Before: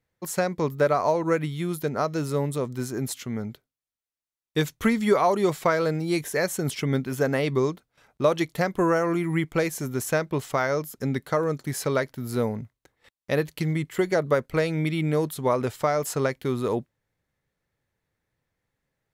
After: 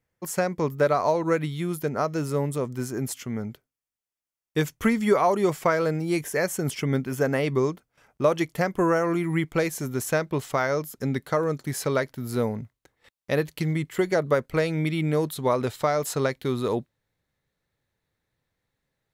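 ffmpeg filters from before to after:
-af "asetnsamples=n=441:p=0,asendcmd='0.83 equalizer g 3;1.6 equalizer g -8;9.04 equalizer g 0;15.3 equalizer g 6.5',equalizer=f=3.9k:t=o:w=0.27:g=-7"

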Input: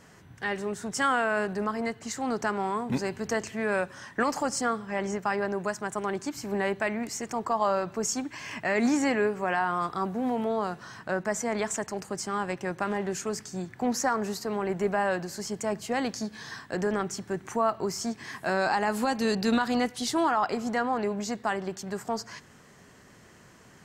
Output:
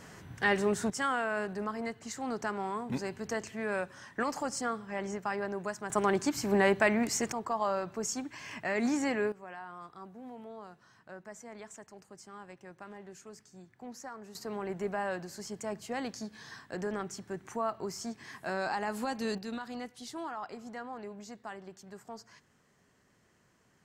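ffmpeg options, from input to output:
-af "asetnsamples=n=441:p=0,asendcmd='0.9 volume volume -6dB;5.9 volume volume 3dB;7.32 volume volume -5.5dB;9.32 volume volume -18dB;14.35 volume volume -7.5dB;19.38 volume volume -14.5dB',volume=3.5dB"

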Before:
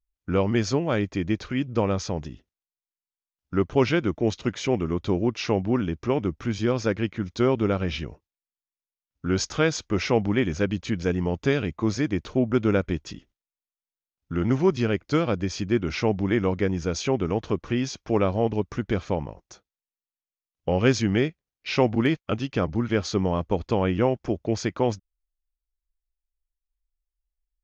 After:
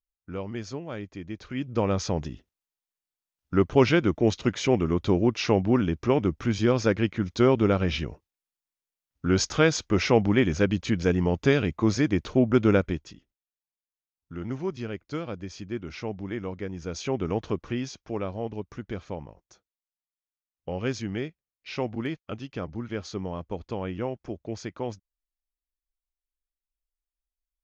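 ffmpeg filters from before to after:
-af "volume=9.5dB,afade=t=in:st=1.33:d=0.8:silence=0.223872,afade=t=out:st=12.74:d=0.4:silence=0.266073,afade=t=in:st=16.72:d=0.65:silence=0.398107,afade=t=out:st=17.37:d=0.78:silence=0.446684"

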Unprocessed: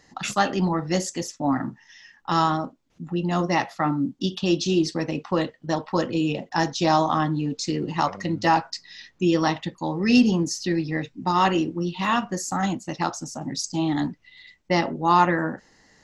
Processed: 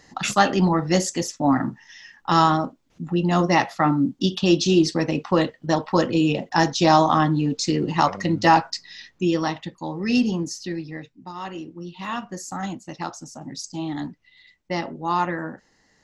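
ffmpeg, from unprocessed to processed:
-af "volume=14dB,afade=t=out:st=8.61:d=0.9:silence=0.446684,afade=t=out:st=10.43:d=0.92:silence=0.251189,afade=t=in:st=11.35:d=1.07:silence=0.316228"

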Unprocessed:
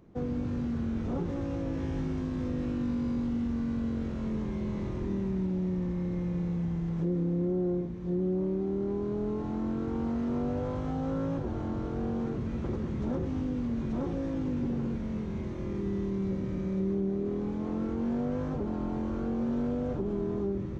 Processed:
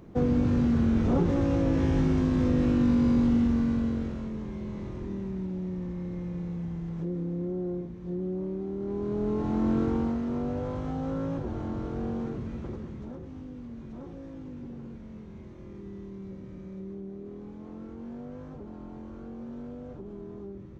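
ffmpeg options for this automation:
-af "volume=18dB,afade=t=out:st=3.32:d=0.98:silence=0.281838,afade=t=in:st=8.78:d=1:silence=0.316228,afade=t=out:st=9.78:d=0.43:silence=0.446684,afade=t=out:st=12.11:d=1.05:silence=0.316228"

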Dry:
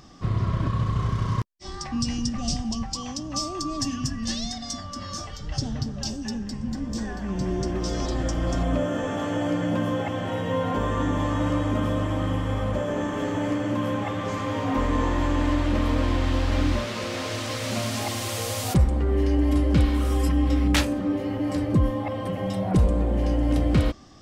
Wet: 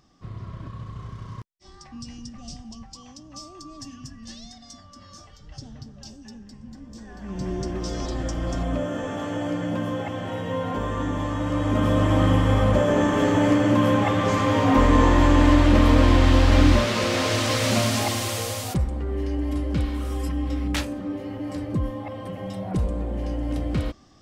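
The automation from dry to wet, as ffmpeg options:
-af "volume=7dB,afade=t=in:st=7.05:d=0.42:silence=0.316228,afade=t=in:st=11.47:d=0.72:silence=0.354813,afade=t=out:st=17.64:d=1.15:silence=0.251189"

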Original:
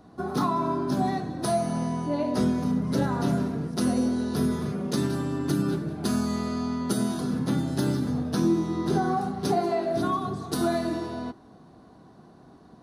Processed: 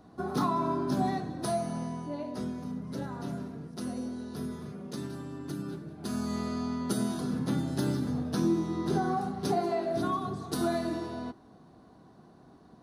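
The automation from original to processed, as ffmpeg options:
-af "volume=4.5dB,afade=t=out:st=1.03:d=1.34:silence=0.375837,afade=t=in:st=5.97:d=0.42:silence=0.421697"

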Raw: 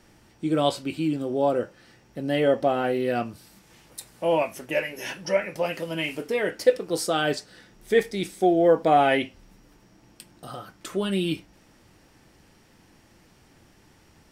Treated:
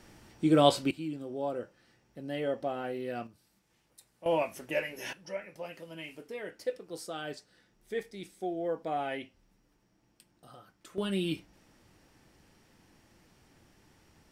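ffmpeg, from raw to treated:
-af "asetnsamples=n=441:p=0,asendcmd='0.91 volume volume -11.5dB;3.27 volume volume -18dB;4.26 volume volume -6dB;5.13 volume volume -15dB;10.98 volume volume -6dB',volume=0.5dB"

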